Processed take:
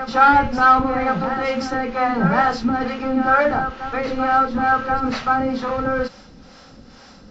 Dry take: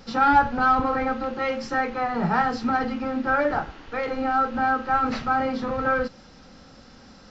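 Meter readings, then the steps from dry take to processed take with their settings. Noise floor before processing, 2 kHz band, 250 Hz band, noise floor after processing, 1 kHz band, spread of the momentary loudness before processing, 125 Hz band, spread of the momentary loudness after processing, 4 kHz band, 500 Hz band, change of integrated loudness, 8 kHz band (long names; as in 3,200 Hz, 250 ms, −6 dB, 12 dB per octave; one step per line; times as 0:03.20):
−49 dBFS, +5.0 dB, +5.0 dB, −45 dBFS, +5.0 dB, 8 LU, +6.5 dB, 9 LU, +5.5 dB, +4.5 dB, +5.0 dB, can't be measured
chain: two-band tremolo in antiphase 2.2 Hz, depth 70%, crossover 470 Hz
backwards echo 1,080 ms −8 dB
level +7.5 dB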